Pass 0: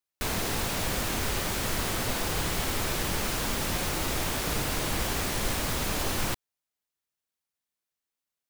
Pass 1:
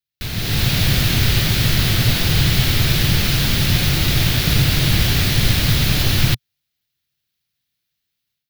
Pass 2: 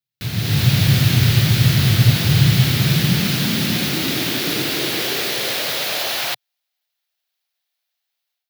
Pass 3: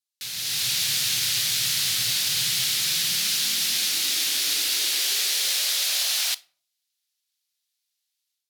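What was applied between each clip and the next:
octave-band graphic EQ 125/250/500/1,000/4,000/8,000 Hz +11/−4/−7/−11/+6/−10 dB; automatic gain control gain up to 11 dB; level +2 dB
high-pass filter sweep 120 Hz → 710 Hz, 0:02.35–0:06.35; level −1.5 dB
resonant band-pass 7,900 Hz, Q 1.1; rectangular room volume 420 cubic metres, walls furnished, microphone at 0.3 metres; level +6 dB

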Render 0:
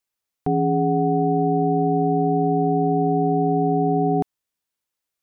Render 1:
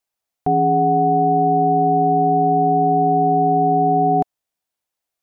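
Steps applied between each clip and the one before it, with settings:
parametric band 710 Hz +8.5 dB 0.52 octaves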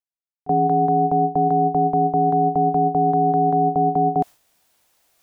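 noise gate with hold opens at −8 dBFS
reversed playback
upward compression, threshold −30 dBFS
reversed playback
level −1.5 dB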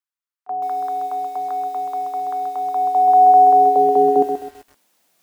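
hum removal 98.14 Hz, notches 16
high-pass filter sweep 1,200 Hz → 190 Hz, 0:02.56–0:05.09
feedback echo at a low word length 130 ms, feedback 35%, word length 7 bits, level −7 dB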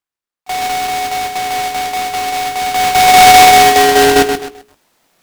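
each half-wave held at its own peak
mains-hum notches 60/120/180/240/300/360/420 Hz
short delay modulated by noise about 2,200 Hz, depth 0.054 ms
level +3 dB

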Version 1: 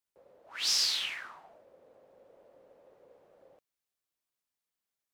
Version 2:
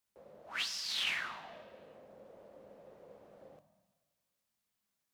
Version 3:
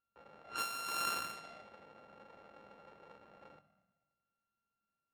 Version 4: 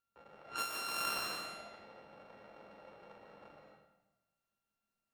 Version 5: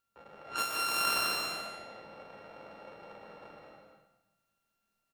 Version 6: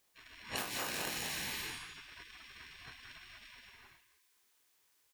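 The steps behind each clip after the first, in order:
compressor whose output falls as the input rises −36 dBFS, ratio −1; on a send at −10 dB: convolution reverb RT60 1.5 s, pre-delay 3 ms; on the sum: level −1 dB
samples sorted by size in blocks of 32 samples; low-pass that shuts in the quiet parts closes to 1,900 Hz, open at −35.5 dBFS; level −1.5 dB
comb and all-pass reverb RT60 0.84 s, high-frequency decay 0.9×, pre-delay 100 ms, DRR 0.5 dB
single-tap delay 209 ms −6 dB; level +5 dB
gate on every frequency bin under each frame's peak −20 dB weak; downward compressor 10 to 1, threshold −48 dBFS, peak gain reduction 12.5 dB; level +13 dB

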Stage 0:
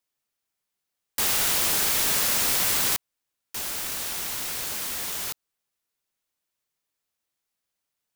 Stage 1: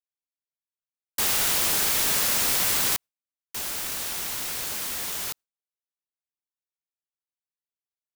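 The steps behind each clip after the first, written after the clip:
noise gate with hold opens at −27 dBFS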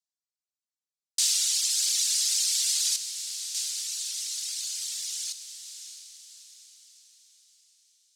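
reverb reduction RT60 1.8 s
flat-topped band-pass 5,900 Hz, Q 1.3
feedback delay with all-pass diffusion 630 ms, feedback 46%, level −9.5 dB
level +7 dB

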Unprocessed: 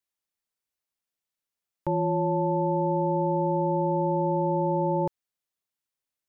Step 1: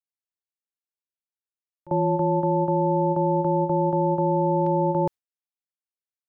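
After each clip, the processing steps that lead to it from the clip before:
noise gate with hold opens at −17 dBFS
level +3.5 dB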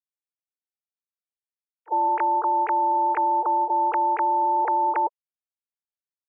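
three sine waves on the formant tracks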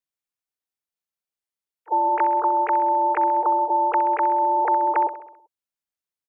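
repeating echo 65 ms, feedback 58%, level −13 dB
level +2.5 dB

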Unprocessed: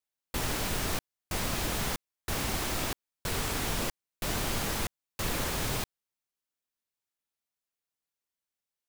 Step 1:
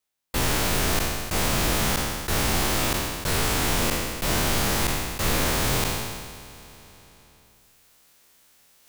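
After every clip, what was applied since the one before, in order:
peak hold with a decay on every bin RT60 1.75 s
reversed playback
upward compression, threshold −43 dBFS
reversed playback
level +5 dB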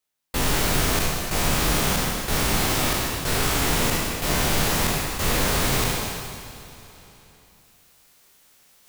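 dense smooth reverb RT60 1.7 s, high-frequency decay 1×, DRR 3.5 dB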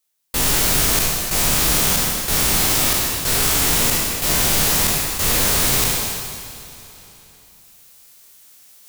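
high-shelf EQ 3,800 Hz +10.5 dB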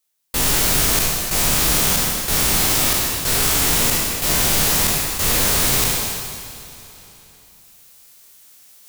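no processing that can be heard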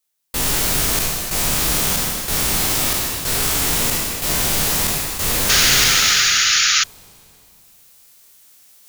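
sound drawn into the spectrogram noise, 0:05.49–0:06.84, 1,200–7,100 Hz −14 dBFS
level −1.5 dB

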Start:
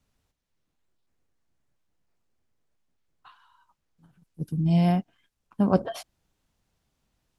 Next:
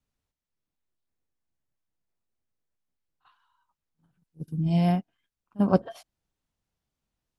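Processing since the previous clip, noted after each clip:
backwards echo 44 ms −16 dB
expander for the loud parts 1.5 to 1, over −38 dBFS
level +1 dB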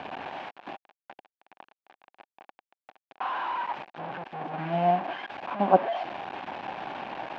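linear delta modulator 64 kbit/s, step −27.5 dBFS
loudspeaker in its box 430–2,300 Hz, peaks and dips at 460 Hz −7 dB, 780 Hz +8 dB, 1,300 Hz −7 dB, 2,000 Hz −8 dB
level +5.5 dB

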